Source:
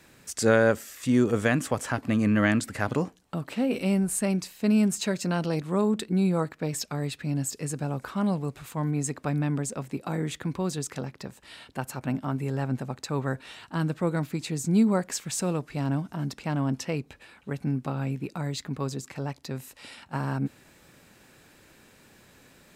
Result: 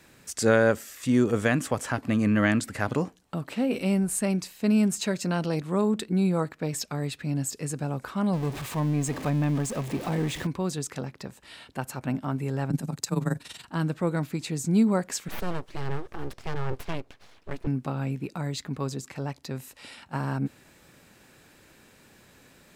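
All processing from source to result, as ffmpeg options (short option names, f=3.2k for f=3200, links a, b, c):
-filter_complex "[0:a]asettb=1/sr,asplit=3[a][b][c];[a]atrim=end=8.334[d];[b]atrim=start=8.33:end=10.47,asetpts=PTS-STARTPTS,afade=t=in:d=0.004:c=qsin,afade=t=out:st=2.136:d=0.004:c=qsin,aeval=exprs='val(0)+0.5*0.0282*sgn(val(0))':c=same,highshelf=f=5.4k:g=-6,bandreject=f=1.4k:w=8.4[e];[c]atrim=start=10.466[f];[d][e]acrossfade=d=0.004:c1=hsin:c2=qsin[g];[g][f]acrossfade=d=0.004:c1=qsin:c2=hsin,asettb=1/sr,asplit=3[h][i][j];[h]atrim=end=12.704[k];[i]atrim=start=12.7:end=13.65,asetpts=PTS-STARTPTS,afade=t=in:d=0.004:c=qsin,afade=t=out:st=0.946:d=0.004:c=qsin,bass=f=250:g=8,treble=f=4k:g=13,tremolo=f=21:d=0.824,afreqshift=21[l];[j]atrim=start=13.646[m];[k][l]acrossfade=d=0.004:c1=hsin:c2=qsin[n];[n][m]acrossfade=d=0.004:c1=qsin:c2=hsin,asettb=1/sr,asplit=3[o][p][q];[o]atrim=end=15.284[r];[p]atrim=start=15.28:end=17.67,asetpts=PTS-STARTPTS,afade=t=in:d=0.004:c=qsin,afade=t=out:st=2.386:d=0.004:c=qsin,aeval=exprs='abs(val(0))':c=same,highshelf=f=6.2k:g=-7[s];[q]atrim=start=17.666[t];[r][s]acrossfade=d=0.004:c1=hsin:c2=qsin[u];[u][t]acrossfade=d=0.004:c1=qsin:c2=hsin"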